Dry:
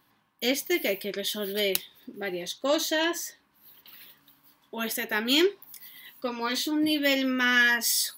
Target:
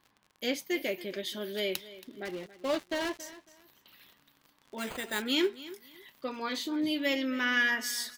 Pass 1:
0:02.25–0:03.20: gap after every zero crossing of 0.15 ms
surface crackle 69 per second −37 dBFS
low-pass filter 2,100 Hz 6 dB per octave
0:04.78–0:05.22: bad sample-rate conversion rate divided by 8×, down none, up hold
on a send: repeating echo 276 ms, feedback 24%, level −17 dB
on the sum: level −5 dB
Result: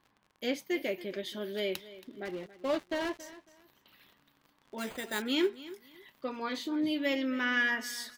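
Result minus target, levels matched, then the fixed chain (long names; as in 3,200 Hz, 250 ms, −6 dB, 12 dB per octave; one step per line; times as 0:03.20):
4,000 Hz band −2.5 dB
0:02.25–0:03.20: gap after every zero crossing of 0.15 ms
surface crackle 69 per second −37 dBFS
low-pass filter 5,100 Hz 6 dB per octave
0:04.78–0:05.22: bad sample-rate conversion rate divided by 8×, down none, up hold
on a send: repeating echo 276 ms, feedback 24%, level −17 dB
on the sum: level −5 dB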